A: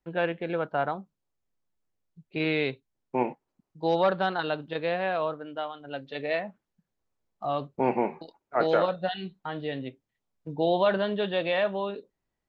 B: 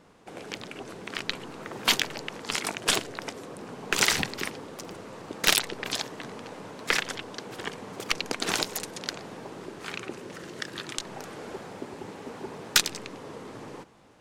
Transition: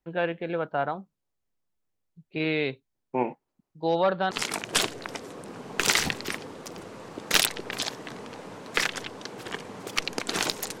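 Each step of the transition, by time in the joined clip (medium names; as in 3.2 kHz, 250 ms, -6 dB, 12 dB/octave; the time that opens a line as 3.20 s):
A
4.31 s: go over to B from 2.44 s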